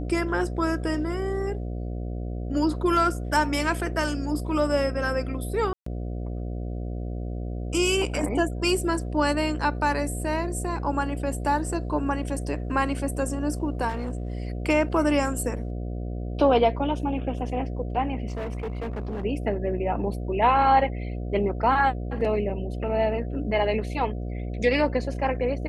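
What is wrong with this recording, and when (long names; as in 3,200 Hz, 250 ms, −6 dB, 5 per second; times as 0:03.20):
mains buzz 60 Hz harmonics 12 −31 dBFS
0:05.73–0:05.86: drop-out 134 ms
0:13.88–0:14.33: clipping −25.5 dBFS
0:18.28–0:19.25: clipping −27.5 dBFS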